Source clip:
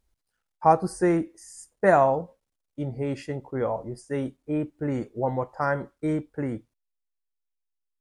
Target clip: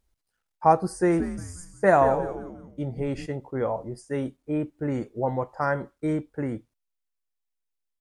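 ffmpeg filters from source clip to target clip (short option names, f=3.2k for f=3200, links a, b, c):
-filter_complex "[0:a]asplit=3[a][b][c];[a]afade=t=out:st=1.11:d=0.02[d];[b]asplit=5[e][f][g][h][i];[f]adelay=177,afreqshift=-120,volume=-10.5dB[j];[g]adelay=354,afreqshift=-240,volume=-18dB[k];[h]adelay=531,afreqshift=-360,volume=-25.6dB[l];[i]adelay=708,afreqshift=-480,volume=-33.1dB[m];[e][j][k][l][m]amix=inputs=5:normalize=0,afade=t=in:st=1.11:d=0.02,afade=t=out:st=3.25:d=0.02[n];[c]afade=t=in:st=3.25:d=0.02[o];[d][n][o]amix=inputs=3:normalize=0"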